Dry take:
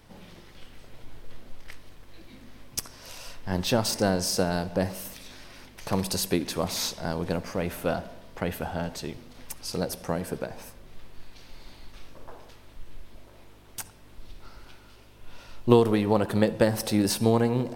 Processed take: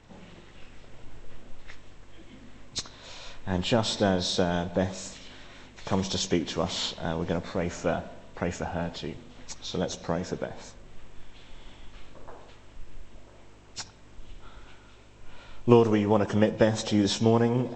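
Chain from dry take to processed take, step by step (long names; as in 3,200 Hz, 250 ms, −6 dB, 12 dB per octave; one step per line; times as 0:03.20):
hearing-aid frequency compression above 2,000 Hz 1.5 to 1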